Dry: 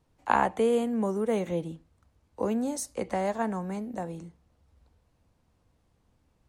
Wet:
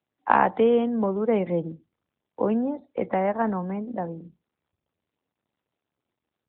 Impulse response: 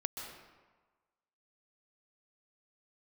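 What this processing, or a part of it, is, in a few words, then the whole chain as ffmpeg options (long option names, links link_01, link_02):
mobile call with aggressive noise cancelling: -af "highpass=120,afftdn=noise_reduction=30:noise_floor=-48,volume=5.5dB" -ar 8000 -c:a libopencore_amrnb -b:a 12200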